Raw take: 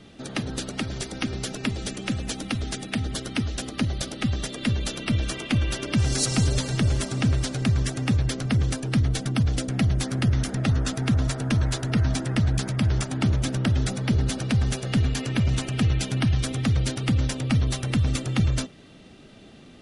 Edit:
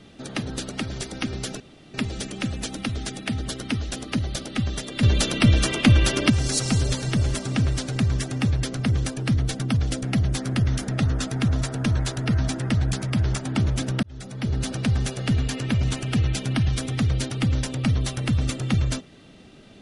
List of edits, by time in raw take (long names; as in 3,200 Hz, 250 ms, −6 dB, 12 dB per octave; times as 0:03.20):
0:01.60: splice in room tone 0.34 s
0:04.69–0:05.96: clip gain +7.5 dB
0:13.69–0:14.36: fade in